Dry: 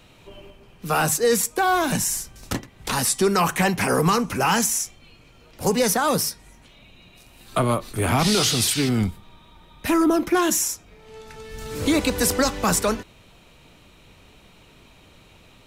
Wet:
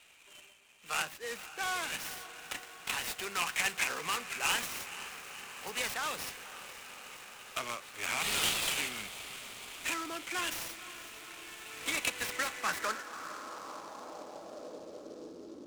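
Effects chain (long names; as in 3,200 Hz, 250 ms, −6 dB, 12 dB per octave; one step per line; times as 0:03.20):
0:01.02–0:01.61: high-shelf EQ 2,200 Hz −10 dB
on a send: feedback delay with all-pass diffusion 511 ms, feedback 79%, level −14 dB
on the sum: band-pass filter sweep 2,600 Hz → 340 Hz, 0:12.16–0:15.62
short delay modulated by noise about 4,600 Hz, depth 0.04 ms
level −1 dB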